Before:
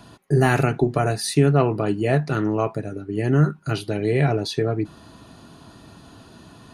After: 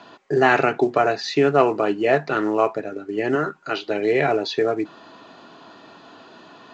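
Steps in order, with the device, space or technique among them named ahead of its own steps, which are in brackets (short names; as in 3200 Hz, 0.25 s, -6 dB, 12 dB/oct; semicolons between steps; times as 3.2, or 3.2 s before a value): 3.35–3.9 HPF 290 Hz 6 dB/oct; telephone (BPF 390–3600 Hz; gain +5.5 dB; A-law 128 kbps 16000 Hz)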